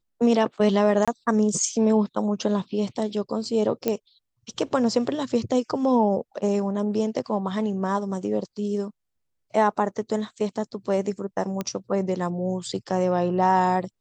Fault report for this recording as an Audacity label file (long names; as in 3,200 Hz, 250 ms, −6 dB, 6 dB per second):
1.050000	1.080000	drop-out 26 ms
3.880000	3.880000	click −10 dBFS
11.610000	11.610000	click −14 dBFS